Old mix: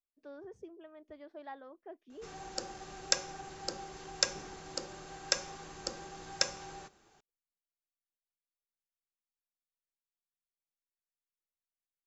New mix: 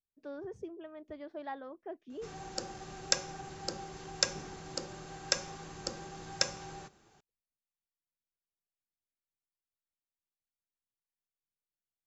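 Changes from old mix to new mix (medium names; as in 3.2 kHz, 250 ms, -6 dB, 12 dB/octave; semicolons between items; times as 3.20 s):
speech +4.5 dB; master: add peaking EQ 130 Hz +6.5 dB 1.7 oct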